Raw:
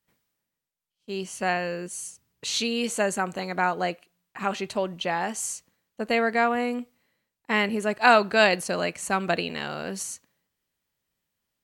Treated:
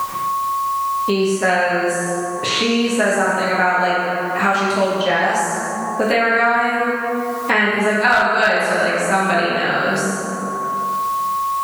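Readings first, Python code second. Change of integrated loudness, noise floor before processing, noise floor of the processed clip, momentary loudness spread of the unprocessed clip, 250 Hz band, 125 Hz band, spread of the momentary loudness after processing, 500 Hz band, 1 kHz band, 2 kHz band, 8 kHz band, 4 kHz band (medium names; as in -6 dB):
+8.0 dB, -85 dBFS, -24 dBFS, 15 LU, +9.0 dB, +9.5 dB, 7 LU, +8.5 dB, +10.5 dB, +10.5 dB, +5.5 dB, +7.0 dB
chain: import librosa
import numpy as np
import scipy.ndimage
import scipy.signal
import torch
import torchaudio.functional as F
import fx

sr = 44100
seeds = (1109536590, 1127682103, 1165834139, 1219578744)

y = x + 10.0 ** (-46.0 / 20.0) * np.sin(2.0 * np.pi * 1100.0 * np.arange(len(x)) / sr)
y = fx.rev_plate(y, sr, seeds[0], rt60_s=1.7, hf_ratio=0.55, predelay_ms=0, drr_db=-8.0)
y = fx.dynamic_eq(y, sr, hz=1500.0, q=2.2, threshold_db=-41.0, ratio=4.0, max_db=7)
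y = fx.quant_dither(y, sr, seeds[1], bits=10, dither='triangular')
y = fx.band_squash(y, sr, depth_pct=100)
y = y * 10.0 ** (-1.5 / 20.0)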